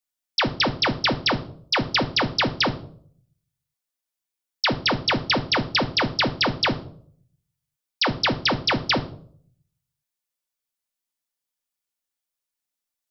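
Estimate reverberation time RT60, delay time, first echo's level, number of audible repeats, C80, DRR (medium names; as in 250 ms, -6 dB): 0.60 s, no echo, no echo, no echo, 19.0 dB, 5.5 dB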